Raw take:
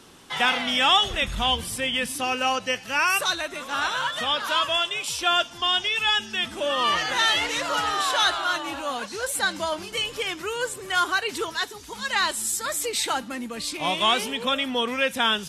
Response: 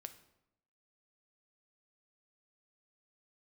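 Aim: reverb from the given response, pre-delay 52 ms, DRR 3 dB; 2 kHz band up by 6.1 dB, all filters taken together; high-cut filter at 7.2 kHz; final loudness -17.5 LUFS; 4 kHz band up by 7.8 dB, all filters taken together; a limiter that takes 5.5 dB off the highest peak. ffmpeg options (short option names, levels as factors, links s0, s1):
-filter_complex "[0:a]lowpass=7200,equalizer=f=2000:t=o:g=6,equalizer=f=4000:t=o:g=8,alimiter=limit=0.376:level=0:latency=1,asplit=2[s0][s1];[1:a]atrim=start_sample=2205,adelay=52[s2];[s1][s2]afir=irnorm=-1:irlink=0,volume=1.33[s3];[s0][s3]amix=inputs=2:normalize=0,volume=0.944"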